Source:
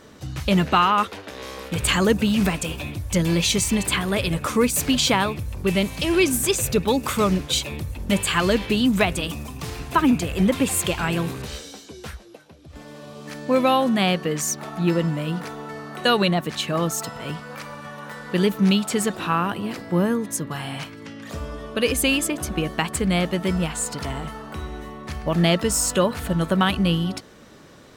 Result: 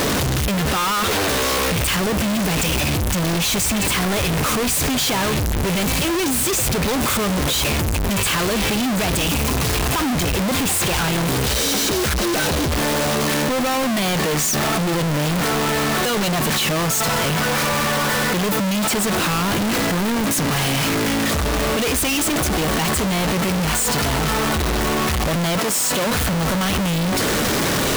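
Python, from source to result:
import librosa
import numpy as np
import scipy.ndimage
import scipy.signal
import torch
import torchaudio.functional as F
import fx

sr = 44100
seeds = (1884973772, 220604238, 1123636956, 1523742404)

y = np.sign(x) * np.sqrt(np.mean(np.square(x)))
y = fx.highpass(y, sr, hz=fx.line((25.59, 230.0), (26.05, 110.0)), slope=12, at=(25.59, 26.05), fade=0.02)
y = y * 10.0 ** (3.5 / 20.0)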